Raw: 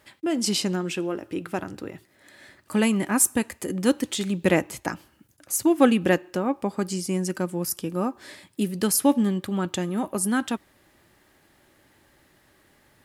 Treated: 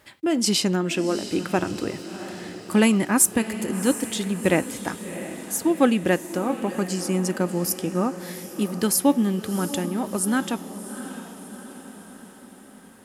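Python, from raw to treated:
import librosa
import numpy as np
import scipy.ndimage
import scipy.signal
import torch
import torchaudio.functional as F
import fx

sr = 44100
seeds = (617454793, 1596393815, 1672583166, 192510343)

y = fx.rider(x, sr, range_db=10, speed_s=2.0)
y = fx.echo_diffused(y, sr, ms=708, feedback_pct=56, wet_db=-12.0)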